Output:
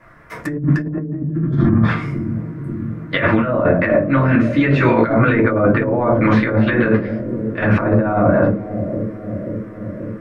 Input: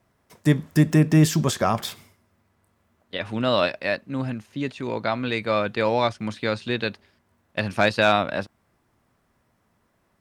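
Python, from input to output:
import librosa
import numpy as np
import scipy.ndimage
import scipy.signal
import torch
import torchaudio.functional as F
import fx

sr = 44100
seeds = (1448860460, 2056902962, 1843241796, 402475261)

y = fx.band_shelf(x, sr, hz=1600.0, db=11.0, octaves=1.3)
y = fx.env_lowpass_down(y, sr, base_hz=490.0, full_db=-14.5)
y = fx.spec_repair(y, sr, seeds[0], start_s=1.37, length_s=0.4, low_hz=370.0, high_hz=3000.0, source='both')
y = fx.hum_notches(y, sr, base_hz=50, count=9)
y = fx.room_shoebox(y, sr, seeds[1], volume_m3=120.0, walls='furnished', distance_m=2.5)
y = fx.over_compress(y, sr, threshold_db=-23.0, ratio=-1.0)
y = fx.high_shelf(y, sr, hz=2700.0, db=-11.0)
y = fx.echo_bbd(y, sr, ms=534, stages=2048, feedback_pct=76, wet_db=-9.5)
y = y * librosa.db_to_amplitude(6.5)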